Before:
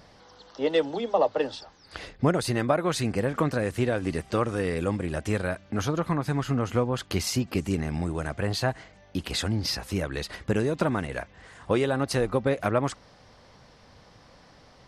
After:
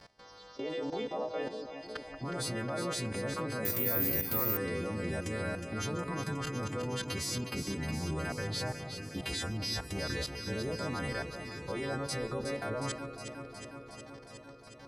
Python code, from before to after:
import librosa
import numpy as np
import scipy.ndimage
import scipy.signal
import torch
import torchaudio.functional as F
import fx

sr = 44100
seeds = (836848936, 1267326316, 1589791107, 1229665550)

y = fx.freq_snap(x, sr, grid_st=2)
y = fx.high_shelf(y, sr, hz=3300.0, db=-8.0)
y = fx.level_steps(y, sr, step_db=18)
y = fx.echo_alternate(y, sr, ms=182, hz=1200.0, feedback_pct=86, wet_db=-7)
y = fx.resample_bad(y, sr, factor=3, down='none', up='zero_stuff', at=(3.65, 4.57))